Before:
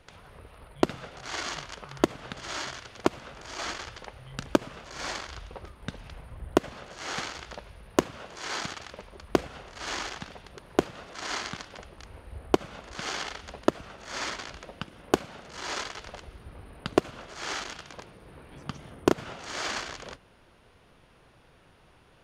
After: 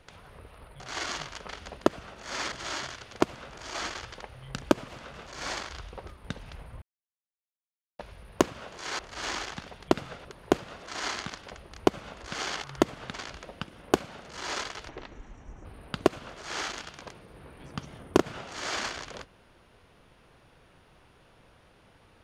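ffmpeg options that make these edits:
-filter_complex "[0:a]asplit=16[s0][s1][s2][s3][s4][s5][s6][s7][s8][s9][s10][s11][s12][s13][s14][s15];[s0]atrim=end=0.802[s16];[s1]atrim=start=1.168:end=1.862[s17];[s2]atrim=start=13.308:end=14.342[s18];[s3]atrim=start=2.358:end=4.722[s19];[s4]atrim=start=3.088:end=3.352[s20];[s5]atrim=start=4.718:end=6.4,asetpts=PTS-STARTPTS,afade=t=out:st=1.678:d=0.004:c=hsin[s21];[s6]atrim=start=6.4:end=7.57,asetpts=PTS-STARTPTS,volume=0[s22];[s7]atrim=start=7.57:end=8.572,asetpts=PTS-STARTPTS,afade=t=in:d=0.004:c=hsin[s23];[s8]atrim=start=9.628:end=10.522[s24];[s9]atrim=start=0.798:end=1.172[s25];[s10]atrim=start=10.518:end=12.142[s26];[s11]atrim=start=12.538:end=13.312[s27];[s12]atrim=start=1.858:end=2.362[s28];[s13]atrim=start=14.338:end=16.094[s29];[s14]atrim=start=16.09:end=16.57,asetpts=PTS-STARTPTS,asetrate=27783,aresample=44100[s30];[s15]atrim=start=16.566[s31];[s16][s17]acrossfade=d=0.004:c1=hsin:c2=hsin[s32];[s32][s18]acrossfade=d=0.004:c1=hsin:c2=hsin[s33];[s33][s19]acrossfade=d=0.004:c1=hsin:c2=hsin[s34];[s34][s20]acrossfade=d=0.004:c1=hsin:c2=hsin[s35];[s21][s22][s23]concat=n=3:v=0:a=1[s36];[s35][s36]acrossfade=d=0.004:c1=hsin:c2=hsin[s37];[s37][s24]acrossfade=d=0.004:c1=hsin:c2=hsin[s38];[s38][s25]acrossfade=d=0.004:c1=hsin:c2=hsin[s39];[s39][s26]acrossfade=d=0.004:c1=hsin:c2=hsin[s40];[s40][s27]acrossfade=d=0.004:c1=hsin:c2=hsin[s41];[s41][s28]acrossfade=d=0.004:c1=hsin:c2=hsin[s42];[s42][s29]acrossfade=d=0.004:c1=hsin:c2=hsin[s43];[s43][s30]acrossfade=d=0.004:c1=hsin:c2=hsin[s44];[s44][s31]acrossfade=d=0.004:c1=hsin:c2=hsin"

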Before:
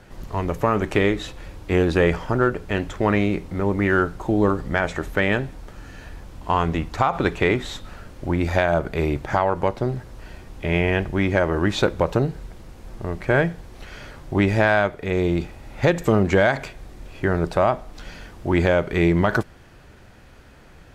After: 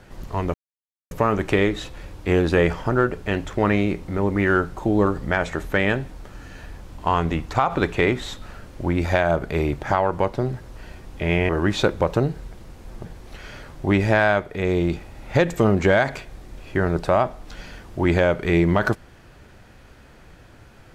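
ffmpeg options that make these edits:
-filter_complex "[0:a]asplit=4[s0][s1][s2][s3];[s0]atrim=end=0.54,asetpts=PTS-STARTPTS,afade=t=out:st=0.536:d=0.004:c=hsin,apad=pad_dur=0.57[s4];[s1]atrim=start=0.54:end=10.922,asetpts=PTS-STARTPTS,afade=t=in:d=0.004:c=hsin[s5];[s2]atrim=start=11.478:end=13.042[s6];[s3]atrim=start=13.528[s7];[s4][s5]concat=n=2:v=0:a=1[s8];[s8][s6]acrossfade=d=0.004:c1=hsin:c2=hsin[s9];[s9][s7]acrossfade=d=0.004:c1=hsin:c2=hsin"

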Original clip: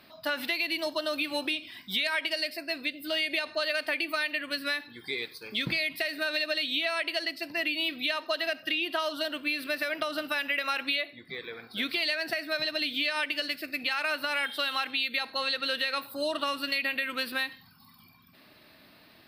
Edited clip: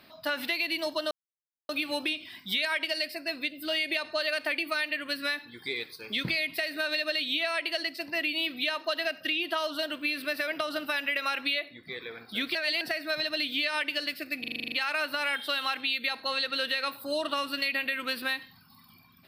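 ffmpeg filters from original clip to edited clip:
-filter_complex "[0:a]asplit=12[s0][s1][s2][s3][s4][s5][s6][s7][s8][s9][s10][s11];[s0]atrim=end=1.11,asetpts=PTS-STARTPTS,afade=t=out:st=1.106:d=0.004:c=hsin,apad=pad_dur=0.58[s12];[s1]atrim=start=1.11:end=11.972,asetpts=PTS-STARTPTS,afade=t=in:d=0.004:c=hsin[s13];[s2]atrim=start=11.968:end=12.232,asetpts=PTS-STARTPTS,areverse[s14];[s3]atrim=start=12.228:end=13.862[s15];[s4]atrim=start=13.818:end=13.862[s16];[s5]atrim=start=13.818:end=13.862[s17];[s6]atrim=start=13.818:end=13.862[s18];[s7]atrim=start=13.818:end=13.862[s19];[s8]atrim=start=13.818:end=13.862[s20];[s9]atrim=start=13.818:end=13.862[s21];[s10]atrim=start=13.818:end=13.862[s22];[s11]atrim=start=13.818[s23];[s12][s13]concat=n=2:v=0:a=1[s24];[s24][s14]acrossfade=d=0.004:c1=hsin:c2=hsin[s25];[s25][s15]acrossfade=d=0.004:c1=hsin:c2=hsin[s26];[s26][s16]acrossfade=d=0.004:c1=hsin:c2=hsin[s27];[s27][s17]acrossfade=d=0.004:c1=hsin:c2=hsin[s28];[s28][s18]acrossfade=d=0.004:c1=hsin:c2=hsin[s29];[s29][s19]acrossfade=d=0.004:c1=hsin:c2=hsin[s30];[s30][s20]acrossfade=d=0.004:c1=hsin:c2=hsin[s31];[s31][s21]acrossfade=d=0.004:c1=hsin:c2=hsin[s32];[s32][s22]acrossfade=d=0.004:c1=hsin:c2=hsin[s33];[s33][s23]acrossfade=d=0.004:c1=hsin:c2=hsin"

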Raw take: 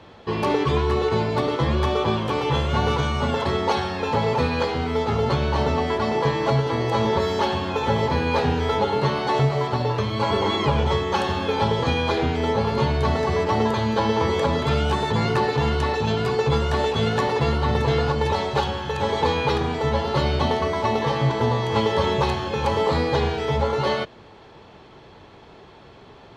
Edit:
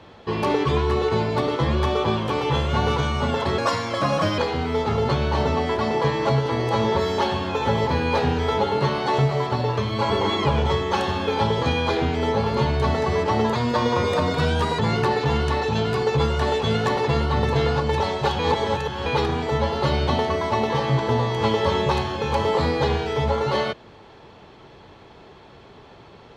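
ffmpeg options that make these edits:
-filter_complex "[0:a]asplit=7[s0][s1][s2][s3][s4][s5][s6];[s0]atrim=end=3.584[s7];[s1]atrim=start=3.58:end=4.59,asetpts=PTS-STARTPTS,asetrate=55566,aresample=44100[s8];[s2]atrim=start=4.586:end=13.764[s9];[s3]atrim=start=13.76:end=15.11,asetpts=PTS-STARTPTS,asetrate=48069,aresample=44100,atrim=end_sample=54619,asetpts=PTS-STARTPTS[s10];[s4]atrim=start=15.106:end=18.712[s11];[s5]atrim=start=18.708:end=19.382,asetpts=PTS-STARTPTS,areverse[s12];[s6]atrim=start=19.378[s13];[s7][s8]acrossfade=d=0.004:c1=hsin:c2=hsin[s14];[s14][s9]acrossfade=d=0.004:c1=hsin:c2=hsin[s15];[s15][s10]acrossfade=d=0.004:c1=hsin:c2=hsin[s16];[s16][s11]acrossfade=d=0.004:c1=hsin:c2=hsin[s17];[s17][s12]acrossfade=d=0.004:c1=hsin:c2=hsin[s18];[s18][s13]acrossfade=d=0.004:c1=hsin:c2=hsin"

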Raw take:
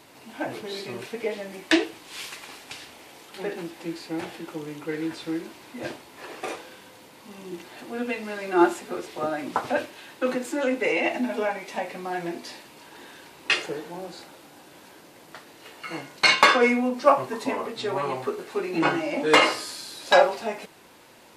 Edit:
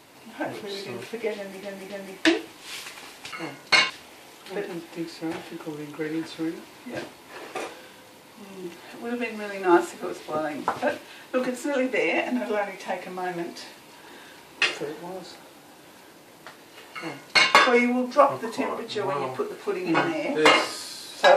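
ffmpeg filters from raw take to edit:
-filter_complex "[0:a]asplit=5[s0][s1][s2][s3][s4];[s0]atrim=end=1.632[s5];[s1]atrim=start=1.358:end=1.632[s6];[s2]atrim=start=1.358:end=2.782[s7];[s3]atrim=start=15.828:end=16.412[s8];[s4]atrim=start=2.778[s9];[s5][s6]acrossfade=d=0.004:c1=hsin:c2=hsin[s10];[s10][s7]acrossfade=d=0.004:c1=hsin:c2=hsin[s11];[s11][s8]acrossfade=d=0.004:c1=hsin:c2=hsin[s12];[s12][s9]acrossfade=d=0.004:c1=hsin:c2=hsin"

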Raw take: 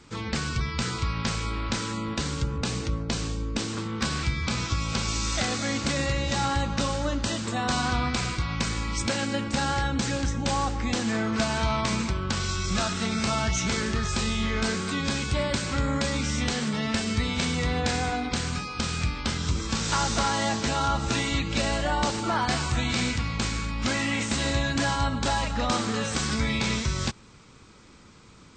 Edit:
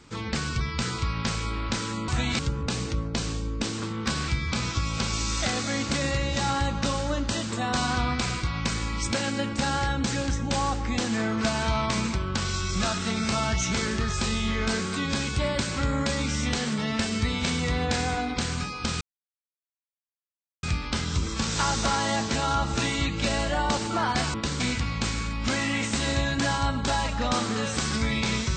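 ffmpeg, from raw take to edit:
-filter_complex "[0:a]asplit=6[s0][s1][s2][s3][s4][s5];[s0]atrim=end=2.082[s6];[s1]atrim=start=22.668:end=22.982[s7];[s2]atrim=start=2.338:end=18.96,asetpts=PTS-STARTPTS,afade=t=out:st=16.618:d=0.004:c=hsin,apad=pad_dur=1.62[s8];[s3]atrim=start=18.96:end=22.672,asetpts=PTS-STARTPTS,afade=t=in:d=0.004:c=hsin[s9];[s4]atrim=start=2.078:end=2.342[s10];[s5]atrim=start=22.978[s11];[s6][s7]acrossfade=d=0.004:c1=hsin:c2=hsin[s12];[s8][s9]concat=n=2:v=0:a=1[s13];[s12][s13]acrossfade=d=0.004:c1=hsin:c2=hsin[s14];[s14][s10]acrossfade=d=0.004:c1=hsin:c2=hsin[s15];[s15][s11]acrossfade=d=0.004:c1=hsin:c2=hsin"

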